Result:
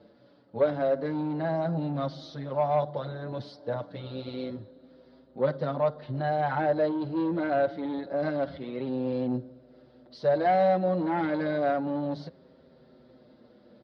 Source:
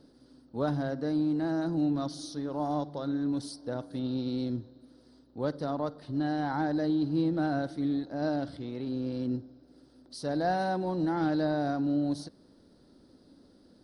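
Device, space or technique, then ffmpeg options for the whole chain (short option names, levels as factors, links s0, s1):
barber-pole flanger into a guitar amplifier: -filter_complex "[0:a]asplit=2[s0][s1];[s1]adelay=6.5,afreqshift=-0.28[s2];[s0][s2]amix=inputs=2:normalize=1,asoftclip=type=tanh:threshold=0.0501,highpass=95,equalizer=f=290:t=q:w=4:g=-9,equalizer=f=570:t=q:w=4:g=8,equalizer=f=2100:t=q:w=4:g=4,lowpass=f=3600:w=0.5412,lowpass=f=3600:w=1.3066,volume=2.37"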